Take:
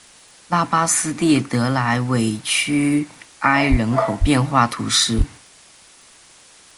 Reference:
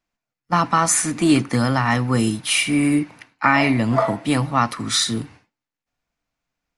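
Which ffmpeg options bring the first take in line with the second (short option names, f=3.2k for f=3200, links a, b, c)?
-filter_complex "[0:a]adeclick=t=4,asplit=3[a][b][c];[a]afade=t=out:st=3.7:d=0.02[d];[b]highpass=f=140:w=0.5412,highpass=f=140:w=1.3066,afade=t=in:st=3.7:d=0.02,afade=t=out:st=3.82:d=0.02[e];[c]afade=t=in:st=3.82:d=0.02[f];[d][e][f]amix=inputs=3:normalize=0,asplit=3[g][h][i];[g]afade=t=out:st=4.2:d=0.02[j];[h]highpass=f=140:w=0.5412,highpass=f=140:w=1.3066,afade=t=in:st=4.2:d=0.02,afade=t=out:st=4.32:d=0.02[k];[i]afade=t=in:st=4.32:d=0.02[l];[j][k][l]amix=inputs=3:normalize=0,asplit=3[m][n][o];[m]afade=t=out:st=5.17:d=0.02[p];[n]highpass=f=140:w=0.5412,highpass=f=140:w=1.3066,afade=t=in:st=5.17:d=0.02,afade=t=out:st=5.29:d=0.02[q];[o]afade=t=in:st=5.29:d=0.02[r];[p][q][r]amix=inputs=3:normalize=0,afwtdn=0.0056,asetnsamples=n=441:p=0,asendcmd='4.25 volume volume -3dB',volume=0dB"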